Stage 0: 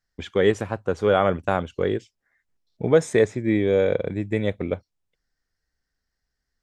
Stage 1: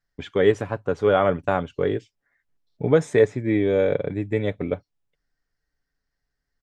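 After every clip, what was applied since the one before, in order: treble shelf 5.1 kHz -9 dB; comb 7 ms, depth 36%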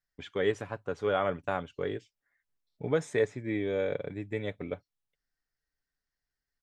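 tilt shelf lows -3 dB; trim -8.5 dB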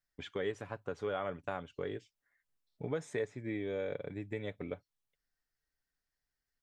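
compression 2:1, threshold -37 dBFS, peak gain reduction 9 dB; trim -1 dB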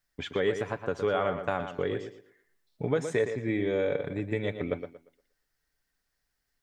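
tape echo 117 ms, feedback 30%, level -7.5 dB, low-pass 4 kHz; trim +8.5 dB

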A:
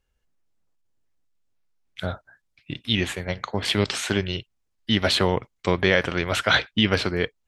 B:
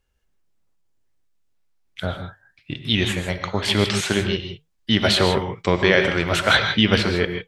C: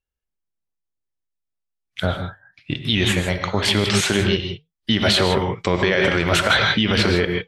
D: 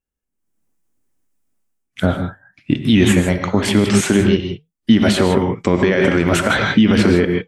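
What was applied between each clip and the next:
flange 1.1 Hz, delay 2.8 ms, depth 2.6 ms, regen -89%; gated-style reverb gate 180 ms rising, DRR 6 dB; trim +7 dB
spectral noise reduction 21 dB; peak limiter -11.5 dBFS, peak gain reduction 10 dB; trim +5 dB
graphic EQ 250/4000/8000 Hz +11/-8/+4 dB; level rider gain up to 16 dB; trim -1 dB

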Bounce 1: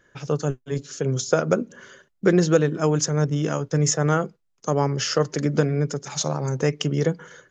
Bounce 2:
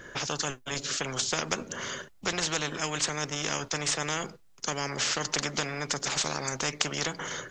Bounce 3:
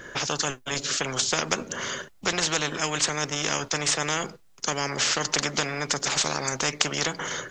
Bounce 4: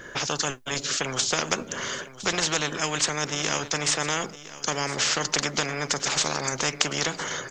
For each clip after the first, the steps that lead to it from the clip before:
spectrum-flattening compressor 4:1
bass shelf 180 Hz -3 dB; trim +4.5 dB
delay 1009 ms -15.5 dB

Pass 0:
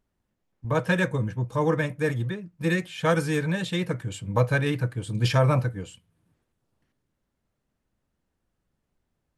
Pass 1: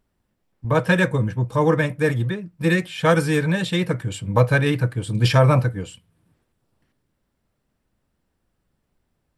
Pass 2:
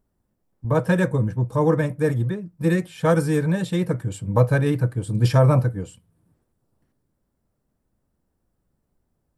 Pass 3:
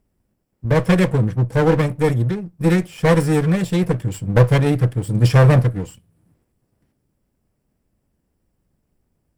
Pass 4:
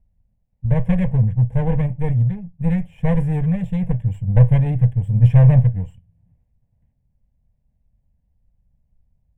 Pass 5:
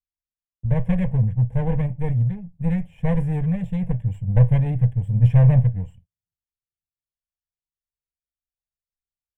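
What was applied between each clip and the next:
band-stop 6.5 kHz, Q 11; trim +5.5 dB
peaking EQ 2.8 kHz -11 dB 2 oct
comb filter that takes the minimum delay 0.39 ms; trim +4.5 dB
RIAA curve playback; static phaser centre 1.3 kHz, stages 6; trim -8 dB
gate -44 dBFS, range -38 dB; trim -3 dB

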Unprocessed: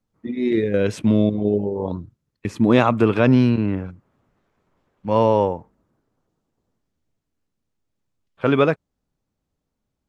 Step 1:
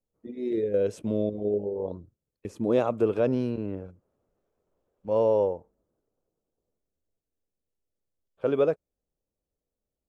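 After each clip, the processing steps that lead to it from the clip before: graphic EQ 125/250/500/1000/2000/4000 Hz -7/-5/+7/-6/-10/-6 dB; trim -7.5 dB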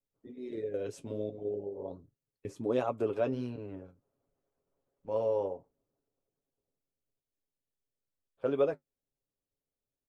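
harmonic-percussive split harmonic -7 dB; comb 7.3 ms, depth 45%; flange 1.4 Hz, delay 6.6 ms, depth 5.3 ms, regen -56%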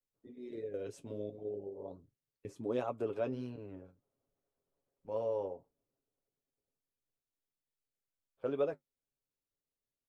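wow and flutter 28 cents; trim -5 dB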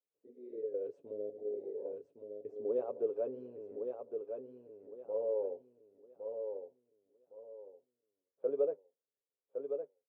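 band-pass filter 470 Hz, Q 3.9; on a send: feedback delay 1112 ms, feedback 29%, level -6 dB; on the sum: trim +4.5 dB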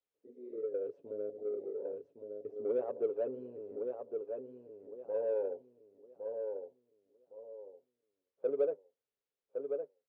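in parallel at -10.5 dB: saturation -36 dBFS, distortion -8 dB; on the sum: distance through air 130 m

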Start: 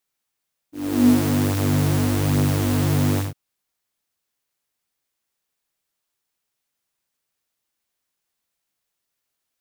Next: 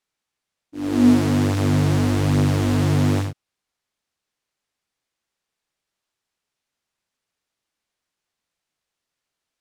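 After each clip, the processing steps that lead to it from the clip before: distance through air 52 m; trim +1.5 dB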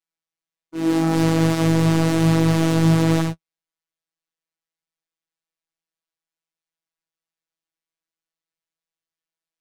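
waveshaping leveller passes 3; flange 1.6 Hz, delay 8 ms, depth 6.9 ms, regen +22%; robot voice 163 Hz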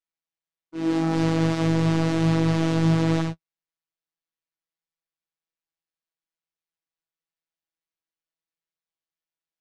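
low-pass 6.1 kHz 12 dB/octave; trim -4 dB

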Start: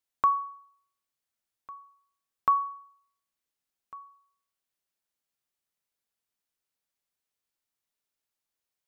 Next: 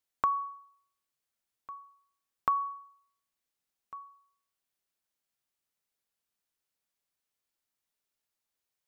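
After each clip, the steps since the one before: compression 4:1, threshold -25 dBFS, peak gain reduction 6 dB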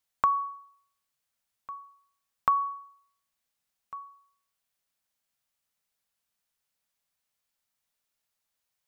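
peaking EQ 350 Hz -9 dB 0.55 oct; trim +4 dB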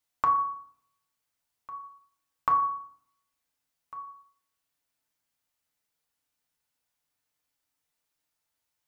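FDN reverb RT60 0.64 s, low-frequency decay 1.2×, high-frequency decay 0.5×, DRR 0 dB; trim -2 dB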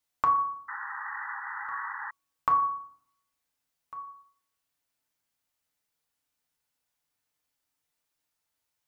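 painted sound noise, 0.68–2.11 s, 790–2000 Hz -37 dBFS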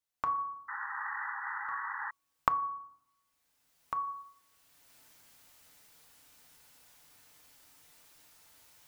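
recorder AGC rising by 17 dB/s; trim -8.5 dB

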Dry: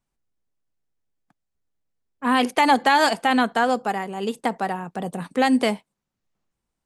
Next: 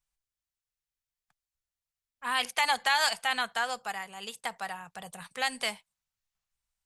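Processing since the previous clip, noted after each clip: amplifier tone stack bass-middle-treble 10-0-10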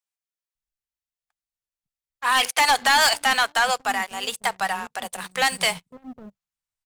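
bands offset in time highs, lows 550 ms, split 330 Hz; waveshaping leveller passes 3; trim +1.5 dB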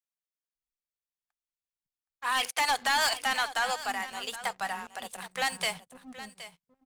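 delay 770 ms -14.5 dB; trim -8.5 dB

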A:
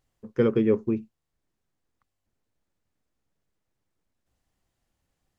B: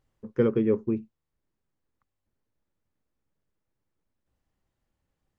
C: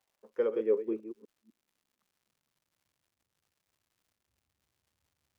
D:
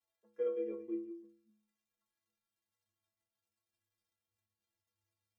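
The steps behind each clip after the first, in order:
treble shelf 2.9 kHz -9 dB; band-stop 710 Hz, Q 12; gain riding within 4 dB 0.5 s
chunks repeated in reverse 250 ms, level -12 dB; high-pass sweep 710 Hz -> 78 Hz, 0.09–3.26 s; crackle 250 per s -55 dBFS; trim -8 dB
inharmonic resonator 100 Hz, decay 0.72 s, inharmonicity 0.03; trim +2.5 dB

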